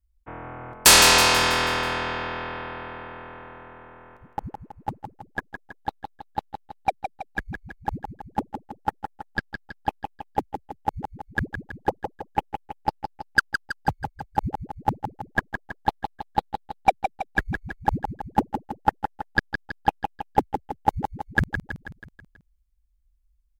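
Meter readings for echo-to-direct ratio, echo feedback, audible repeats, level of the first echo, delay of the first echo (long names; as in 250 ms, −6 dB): −6.5 dB, 54%, 6, −8.0 dB, 162 ms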